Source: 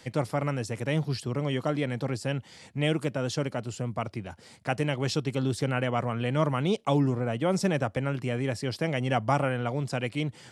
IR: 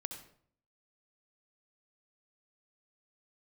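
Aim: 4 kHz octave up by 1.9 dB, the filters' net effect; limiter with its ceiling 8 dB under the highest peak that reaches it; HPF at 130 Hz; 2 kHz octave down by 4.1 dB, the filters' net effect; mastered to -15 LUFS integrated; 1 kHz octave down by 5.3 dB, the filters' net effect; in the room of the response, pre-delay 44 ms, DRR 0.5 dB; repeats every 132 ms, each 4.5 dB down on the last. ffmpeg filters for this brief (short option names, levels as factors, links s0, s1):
-filter_complex "[0:a]highpass=130,equalizer=f=1000:t=o:g=-7,equalizer=f=2000:t=o:g=-4.5,equalizer=f=4000:t=o:g=5,alimiter=limit=0.075:level=0:latency=1,aecho=1:1:132|264|396|528|660|792|924|1056|1188:0.596|0.357|0.214|0.129|0.0772|0.0463|0.0278|0.0167|0.01,asplit=2[s0][s1];[1:a]atrim=start_sample=2205,adelay=44[s2];[s1][s2]afir=irnorm=-1:irlink=0,volume=1.12[s3];[s0][s3]amix=inputs=2:normalize=0,volume=4.73"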